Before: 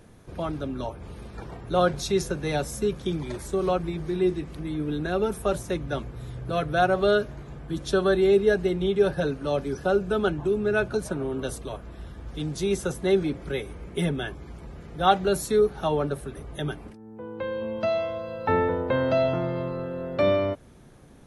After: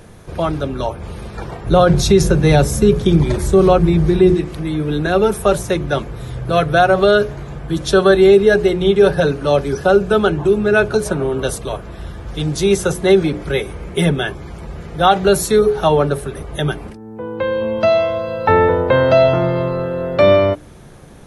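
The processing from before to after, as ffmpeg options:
-filter_complex "[0:a]asettb=1/sr,asplit=3[a][b][c];[a]atrim=end=1.664[d];[b]atrim=start=1.66:end=4.34,asetpts=PTS-STARTPTS,afade=t=in:d=0.004:c=qsin,afade=t=out:st=2.676:d=0.004:c=qsin,lowshelf=f=320:g=10[e];[c]atrim=start=4.336[f];[d][e]acrossfade=d=0.004:c1=hsin:c2=qsin[g];[g][f]acrossfade=d=0.004:c1=qsin:c2=hsin,equalizer=f=260:t=o:w=0.32:g=-6.5,bandreject=f=60:t=h:w=6,bandreject=f=120:t=h:w=6,bandreject=f=180:t=h:w=6,bandreject=f=240:t=h:w=6,bandreject=f=300:t=h:w=6,bandreject=f=360:t=h:w=6,bandreject=f=420:t=h:w=6,alimiter=level_in=13dB:limit=-1dB:release=50:level=0:latency=1,volume=-1dB"

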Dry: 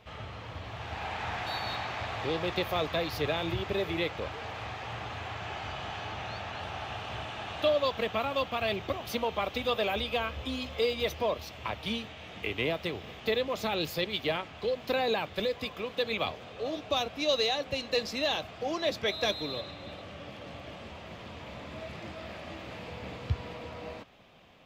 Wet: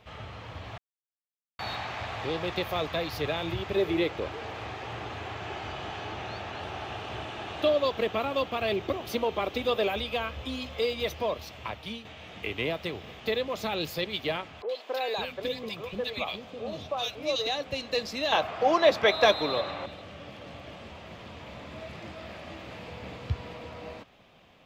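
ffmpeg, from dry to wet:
-filter_complex "[0:a]asettb=1/sr,asplit=3[a][b][c];[a]atrim=end=3.764[d];[b]atrim=start=3.76:end=9.89,asetpts=PTS-STARTPTS,afade=t=in:d=0.004:c=qsin,afade=t=out:st=6.126:d=0.004:c=qsin,equalizer=f=360:t=o:w=0.8:g=8[e];[c]atrim=start=9.886[f];[d][e]acrossfade=d=0.004:c1=hsin:c2=qsin[g];[g][f]acrossfade=d=0.004:c1=qsin:c2=hsin,asettb=1/sr,asplit=3[h][i][j];[h]atrim=end=14.624[k];[i]atrim=start=14.62:end=17.47,asetpts=PTS-STARTPTS,afade=t=in:d=0.004:c=qsin,afade=t=out:st=2.846:d=0.004:c=qsin,acrossover=split=370|1600[l][m][n];[n]adelay=70[o];[l]adelay=550[p];[p][m][o]amix=inputs=3:normalize=0,atrim=end_sample=125685[q];[j]atrim=start=17.466[r];[k][q]acrossfade=d=0.004:c1=hsin:c2=qsin[s];[s][r]acrossfade=d=0.004:c1=qsin:c2=hsin,asettb=1/sr,asplit=3[t][u][v];[t]atrim=end=18.324[w];[u]atrim=start=18.32:end=19.86,asetpts=PTS-STARTPTS,afade=t=in:d=0.004:c=qsin,afade=t=out:st=1.536:d=0.004:c=qsin,equalizer=f=980:w=0.46:g=13[x];[v]atrim=start=19.856[y];[w][x]acrossfade=d=0.004:c1=hsin:c2=qsin[z];[z][y]acrossfade=d=0.004:c1=qsin:c2=hsin,asplit=4[aa][ab][ac][ad];[aa]atrim=end=0.78,asetpts=PTS-STARTPTS,afade=t=out:st=0.776:d=0.004:c=hsin[ae];[ab]atrim=start=0.78:end=1.59,asetpts=PTS-STARTPTS,volume=0[af];[ac]atrim=start=1.59:end=12.05,asetpts=PTS-STARTPTS,afade=t=in:d=0.004:c=hsin,afade=t=out:st=10:d=0.46:silence=0.398107[ag];[ad]atrim=start=12.05,asetpts=PTS-STARTPTS,afade=t=in:d=0.004:c=hsin:silence=0.398107[ah];[ae][af][ag][ah]concat=n=4:v=0:a=1"

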